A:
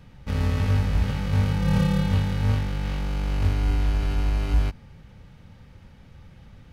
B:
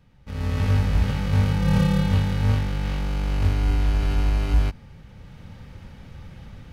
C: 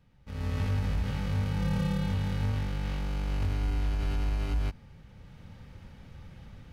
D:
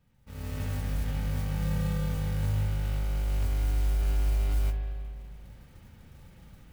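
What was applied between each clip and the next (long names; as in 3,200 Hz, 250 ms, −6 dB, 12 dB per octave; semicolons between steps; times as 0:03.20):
automatic gain control gain up to 15.5 dB; level −9 dB
brickwall limiter −15.5 dBFS, peak gain reduction 5 dB; level −6.5 dB
noise that follows the level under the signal 18 dB; spring reverb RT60 2.3 s, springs 39/48 ms, chirp 30 ms, DRR 5 dB; level −4.5 dB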